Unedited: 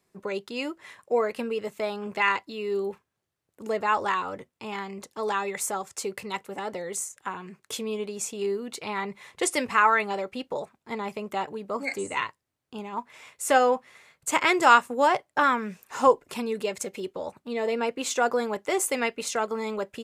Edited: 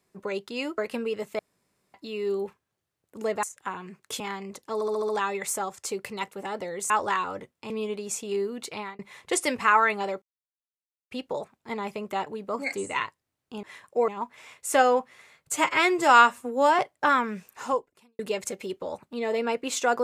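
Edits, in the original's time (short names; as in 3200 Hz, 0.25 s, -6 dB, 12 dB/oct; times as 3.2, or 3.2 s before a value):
0.78–1.23 move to 12.84
1.84–2.39 room tone
3.88–4.68 swap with 7.03–7.8
5.22 stutter 0.07 s, 6 plays
8.83–9.09 fade out
10.32 insert silence 0.89 s
14.29–15.13 stretch 1.5×
15.83–16.53 fade out quadratic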